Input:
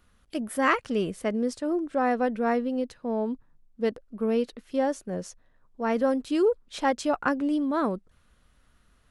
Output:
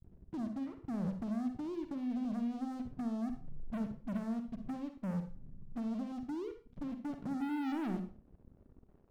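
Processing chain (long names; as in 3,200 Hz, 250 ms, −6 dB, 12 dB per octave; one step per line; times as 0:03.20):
source passing by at 0:03.61, 6 m/s, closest 3.6 metres
high-shelf EQ 7,100 Hz +11.5 dB
notch filter 500 Hz, Q 12
downward compressor 10 to 1, threshold −48 dBFS, peak gain reduction 25.5 dB
low-pass filter sweep 160 Hz → 420 Hz, 0:06.72–0:08.96
leveller curve on the samples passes 5
convolution reverb RT60 0.35 s, pre-delay 44 ms, DRR 7 dB
level +5.5 dB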